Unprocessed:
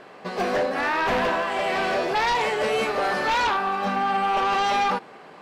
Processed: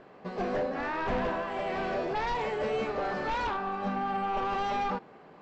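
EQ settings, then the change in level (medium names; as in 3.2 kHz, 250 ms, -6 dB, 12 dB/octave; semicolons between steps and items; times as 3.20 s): brick-wall FIR low-pass 7.9 kHz; tilt EQ -2.5 dB/octave; -9.0 dB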